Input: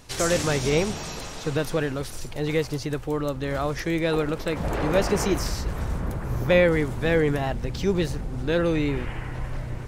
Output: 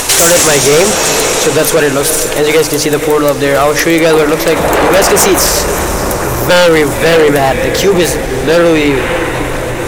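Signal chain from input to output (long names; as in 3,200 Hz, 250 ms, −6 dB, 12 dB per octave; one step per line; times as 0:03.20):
parametric band 4,800 Hz −7 dB 0.83 octaves
mains-hum notches 50/100/150/200/250/300 Hz
on a send: feedback delay with all-pass diffusion 546 ms, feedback 60%, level −13.5 dB
on the sum: upward compression, threshold −25 dBFS
in parallel at −4 dB: gain into a clipping stage and back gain 24 dB
on the sum: bass and treble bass −13 dB, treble +8 dB
sine wavefolder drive 10 dB, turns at −7 dBFS
level +4 dB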